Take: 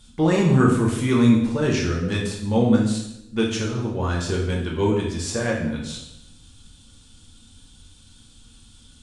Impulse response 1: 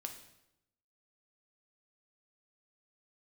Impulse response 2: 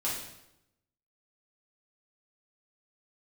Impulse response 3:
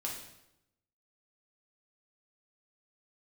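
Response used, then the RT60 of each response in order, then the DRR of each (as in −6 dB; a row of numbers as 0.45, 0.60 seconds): 3; 0.85, 0.85, 0.85 seconds; 4.0, −8.0, −3.0 decibels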